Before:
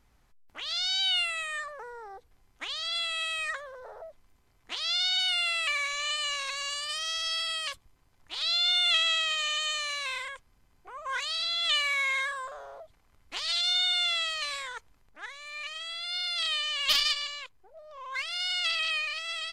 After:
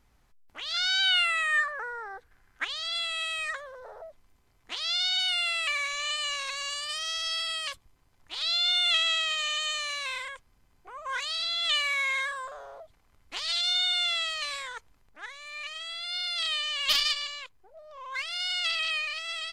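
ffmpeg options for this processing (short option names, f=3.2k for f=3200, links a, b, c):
-filter_complex "[0:a]asettb=1/sr,asplit=3[a][b][c];[a]atrim=end=0.744[d];[b]atrim=start=0.74:end=2.65,asetpts=PTS-STARTPTS,afade=t=in:d=0.004:c=qsin,afade=t=out:st=1.906:d=0.004:c=qsin,equalizer=f=1.6k:t=o:w=0.72:g=15[e];[c]atrim=start=2.646[f];[d][e]acrossfade=d=0.004:c1=hsin:c2=qsin[g];[g][f]acrossfade=d=0.004:c1=qsin:c2=hsin"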